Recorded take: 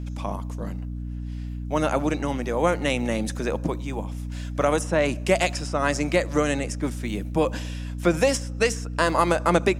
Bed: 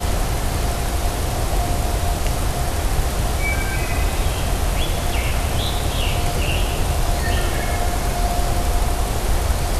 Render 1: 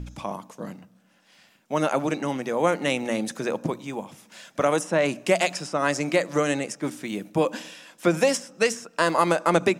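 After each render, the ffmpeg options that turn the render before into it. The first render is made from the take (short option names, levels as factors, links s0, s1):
-af "bandreject=f=60:t=h:w=4,bandreject=f=120:t=h:w=4,bandreject=f=180:t=h:w=4,bandreject=f=240:t=h:w=4,bandreject=f=300:t=h:w=4"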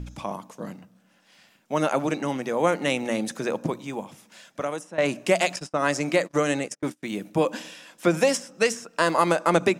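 -filter_complex "[0:a]asettb=1/sr,asplit=3[s0][s1][s2];[s0]atrim=end=5.564[s3];[s1]atrim=start=5.56:end=7.03,asetpts=PTS-STARTPTS,afade=t=in:d=0.004:c=qsin,afade=t=out:st=1.466:d=0.004:c=qsin,agate=range=0.0282:threshold=0.0178:ratio=16:release=100:detection=peak[s4];[s2]atrim=start=7.026[s5];[s3][s4]acrossfade=d=0.004:c1=hsin:c2=qsin[s6];[s6][s5]acrossfade=d=0.004:c1=qsin:c2=hsin,asplit=2[s7][s8];[s7]atrim=end=4.98,asetpts=PTS-STARTPTS,afade=t=out:st=4.03:d=0.95:silence=0.149624[s9];[s8]atrim=start=4.98,asetpts=PTS-STARTPTS,afade=t=in:d=0.004:c=hsin:silence=0.149624[s10];[s9][s10]concat=n=2:v=0:a=1"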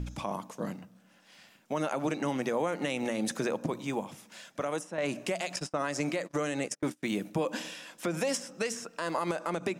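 -af "acompressor=threshold=0.0631:ratio=3,alimiter=limit=0.1:level=0:latency=1:release=121"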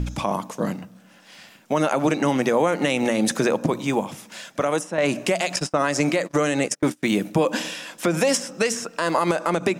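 -af "volume=3.35"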